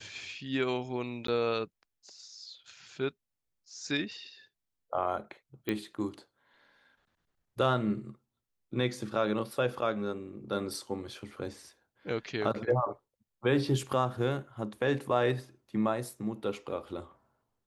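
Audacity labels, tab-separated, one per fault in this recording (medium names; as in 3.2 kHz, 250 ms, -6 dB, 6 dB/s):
1.270000	1.280000	dropout 13 ms
5.690000	5.690000	pop -19 dBFS
10.740000	10.740000	dropout 2.5 ms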